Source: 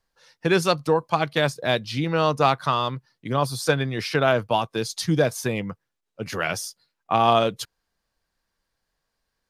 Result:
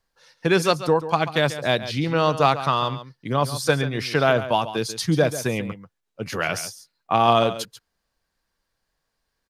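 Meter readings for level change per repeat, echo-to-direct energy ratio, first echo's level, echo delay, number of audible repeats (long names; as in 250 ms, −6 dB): repeats not evenly spaced, −13.0 dB, −13.0 dB, 139 ms, 1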